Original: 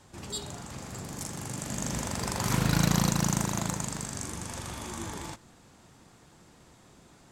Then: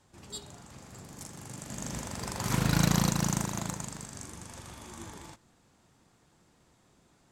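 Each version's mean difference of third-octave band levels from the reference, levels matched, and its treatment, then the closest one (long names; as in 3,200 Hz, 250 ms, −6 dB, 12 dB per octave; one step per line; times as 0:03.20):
4.5 dB: expander for the loud parts 1.5 to 1, over −40 dBFS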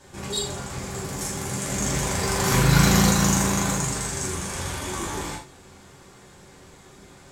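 2.0 dB: reverb whose tail is shaped and stops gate 130 ms falling, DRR −5.5 dB
level +2.5 dB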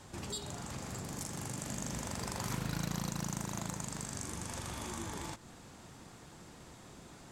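6.0 dB: downward compressor 2.5 to 1, threshold −44 dBFS, peak gain reduction 16 dB
level +3 dB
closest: second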